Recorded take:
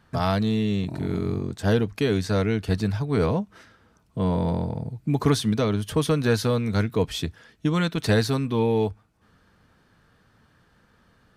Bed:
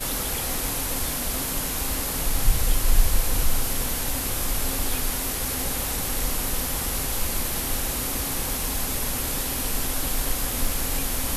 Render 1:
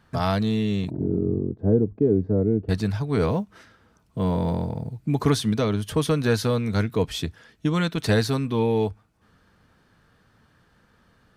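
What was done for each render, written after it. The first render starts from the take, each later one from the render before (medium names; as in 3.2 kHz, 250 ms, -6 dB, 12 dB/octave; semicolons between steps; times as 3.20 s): 0.90–2.69 s: resonant low-pass 390 Hz, resonance Q 1.7; 3.27–4.98 s: short-mantissa float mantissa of 6-bit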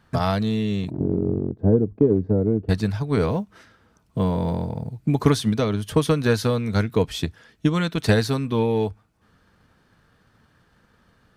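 transient shaper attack +5 dB, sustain 0 dB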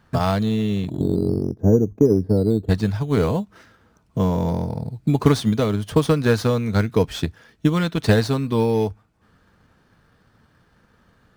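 median filter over 3 samples; in parallel at -11.5 dB: decimation with a swept rate 10×, swing 60% 0.41 Hz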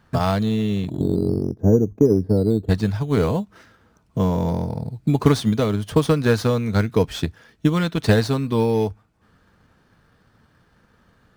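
no audible change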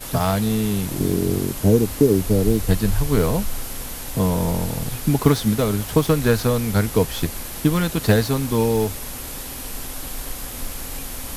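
add bed -5 dB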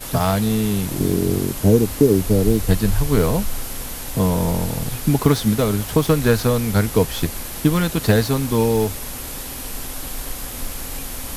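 trim +1.5 dB; peak limiter -3 dBFS, peak gain reduction 2.5 dB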